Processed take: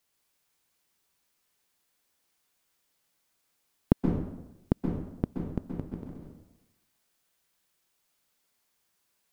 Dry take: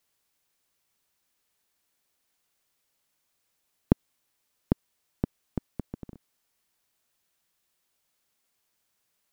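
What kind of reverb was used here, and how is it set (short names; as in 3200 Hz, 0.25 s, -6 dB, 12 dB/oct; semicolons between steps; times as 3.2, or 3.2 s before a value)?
plate-style reverb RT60 0.92 s, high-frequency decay 0.75×, pre-delay 0.115 s, DRR 1 dB; gain -1 dB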